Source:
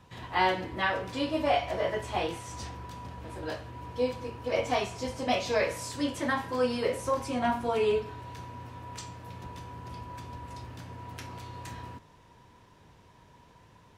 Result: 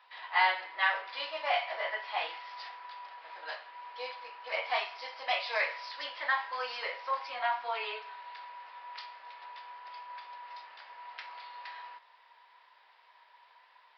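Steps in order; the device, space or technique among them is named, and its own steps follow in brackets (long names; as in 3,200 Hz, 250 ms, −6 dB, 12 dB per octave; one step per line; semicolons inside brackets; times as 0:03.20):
musical greeting card (downsampling to 11,025 Hz; high-pass filter 760 Hz 24 dB per octave; parametric band 2,000 Hz +5 dB 0.33 octaves)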